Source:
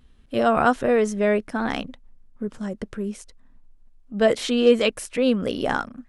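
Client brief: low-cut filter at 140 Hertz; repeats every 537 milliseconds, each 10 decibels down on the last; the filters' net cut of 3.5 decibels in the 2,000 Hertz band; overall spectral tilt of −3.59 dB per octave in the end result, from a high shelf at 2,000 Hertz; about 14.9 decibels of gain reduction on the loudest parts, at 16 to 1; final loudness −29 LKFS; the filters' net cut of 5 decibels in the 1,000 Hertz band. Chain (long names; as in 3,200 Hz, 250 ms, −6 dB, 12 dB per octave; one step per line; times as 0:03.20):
high-pass filter 140 Hz
parametric band 1,000 Hz −8.5 dB
high-shelf EQ 2,000 Hz +9 dB
parametric band 2,000 Hz −7.5 dB
downward compressor 16 to 1, threshold −26 dBFS
repeating echo 537 ms, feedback 32%, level −10 dB
level +3 dB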